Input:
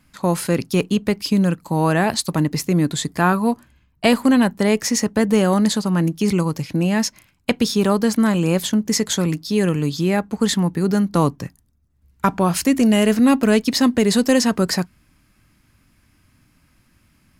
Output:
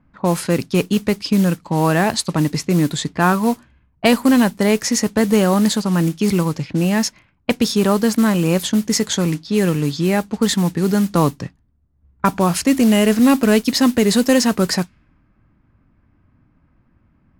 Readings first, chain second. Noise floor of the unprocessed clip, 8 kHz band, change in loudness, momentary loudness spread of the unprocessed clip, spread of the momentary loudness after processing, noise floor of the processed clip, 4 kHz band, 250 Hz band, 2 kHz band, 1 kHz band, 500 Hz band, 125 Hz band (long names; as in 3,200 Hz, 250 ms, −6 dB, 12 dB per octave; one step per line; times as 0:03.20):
−61 dBFS, +1.5 dB, +1.5 dB, 6 LU, 7 LU, −60 dBFS, +1.5 dB, +1.5 dB, +1.5 dB, +1.5 dB, +1.5 dB, +1.5 dB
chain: noise that follows the level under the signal 20 dB
low-pass that shuts in the quiet parts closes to 1,100 Hz, open at −15 dBFS
level +1.5 dB